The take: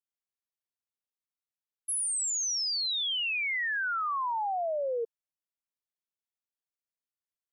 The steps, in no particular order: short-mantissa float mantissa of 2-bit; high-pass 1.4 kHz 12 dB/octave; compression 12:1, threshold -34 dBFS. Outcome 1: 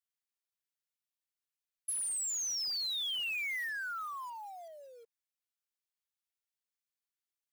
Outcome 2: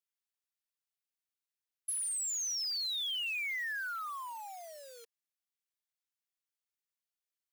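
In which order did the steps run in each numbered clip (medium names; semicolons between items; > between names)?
compression > high-pass > short-mantissa float; compression > short-mantissa float > high-pass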